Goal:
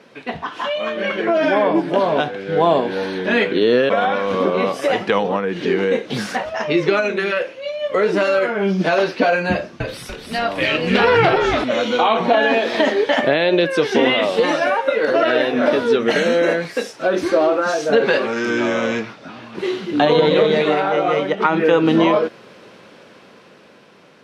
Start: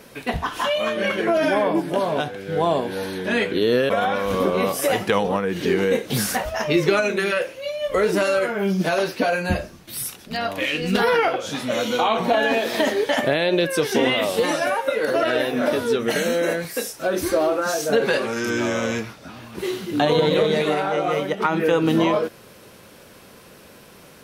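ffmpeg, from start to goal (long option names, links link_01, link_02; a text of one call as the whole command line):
ffmpeg -i in.wav -filter_complex "[0:a]dynaudnorm=framelen=260:gausssize=11:maxgain=11.5dB,highpass=170,lowpass=4100,asettb=1/sr,asplit=3[link_01][link_02][link_03];[link_01]atrim=end=9.514[link_04];[link_02]atrim=start=9.51:end=11.64,asetpts=PTS-STARTPTS,afade=type=in:duration=0.004:curve=qsin,afade=type=out:start_time=2.126:duration=0.004:curve=qsin,asplit=6[link_05][link_06][link_07][link_08][link_09][link_10];[link_06]adelay=290,afreqshift=-72,volume=-4.5dB[link_11];[link_07]adelay=580,afreqshift=-144,volume=-11.6dB[link_12];[link_08]adelay=870,afreqshift=-216,volume=-18.8dB[link_13];[link_09]adelay=1160,afreqshift=-288,volume=-25.9dB[link_14];[link_10]adelay=1450,afreqshift=-360,volume=-33dB[link_15];[link_05][link_11][link_12][link_13][link_14][link_15]amix=inputs=6:normalize=0,atrim=end_sample=93933[link_16];[link_03]atrim=start=11.636[link_17];[link_04][link_16]acrossfade=duration=0.004:curve1=hsin:curve2=qsin[link_18];[link_18][link_17]acrossfade=duration=0.004:curve1=qsin:curve2=hsin,volume=-1dB" out.wav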